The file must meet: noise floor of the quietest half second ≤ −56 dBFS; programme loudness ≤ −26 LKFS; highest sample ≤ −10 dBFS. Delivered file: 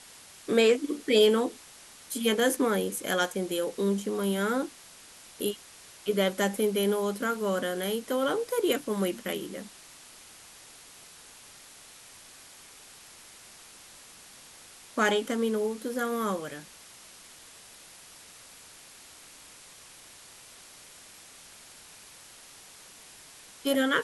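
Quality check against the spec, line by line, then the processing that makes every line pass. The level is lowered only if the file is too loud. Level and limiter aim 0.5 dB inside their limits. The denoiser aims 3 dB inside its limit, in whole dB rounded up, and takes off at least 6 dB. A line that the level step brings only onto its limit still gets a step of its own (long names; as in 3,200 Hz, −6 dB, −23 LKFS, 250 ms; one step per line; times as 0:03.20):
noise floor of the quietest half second −51 dBFS: out of spec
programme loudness −28.0 LKFS: in spec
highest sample −10.5 dBFS: in spec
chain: broadband denoise 8 dB, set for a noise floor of −51 dBFS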